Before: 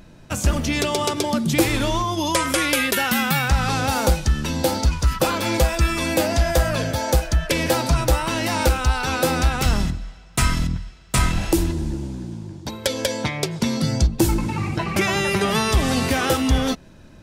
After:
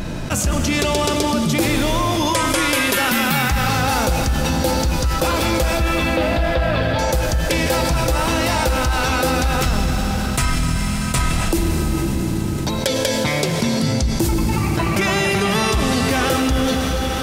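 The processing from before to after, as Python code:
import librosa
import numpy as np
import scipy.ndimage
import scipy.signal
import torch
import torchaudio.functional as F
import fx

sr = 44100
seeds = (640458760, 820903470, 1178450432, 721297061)

y = fx.steep_lowpass(x, sr, hz=4100.0, slope=36, at=(5.77, 6.99))
y = fx.rev_freeverb(y, sr, rt60_s=3.5, hf_ratio=1.0, predelay_ms=65, drr_db=5.0)
y = fx.env_flatten(y, sr, amount_pct=70)
y = F.gain(torch.from_numpy(y), -3.5).numpy()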